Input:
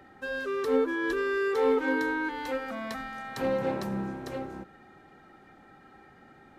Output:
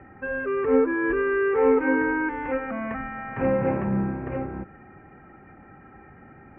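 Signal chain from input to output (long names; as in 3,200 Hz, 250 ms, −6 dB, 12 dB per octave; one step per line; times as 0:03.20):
Butterworth low-pass 2,600 Hz 72 dB per octave
parametric band 75 Hz +9.5 dB 2.5 octaves
level +4 dB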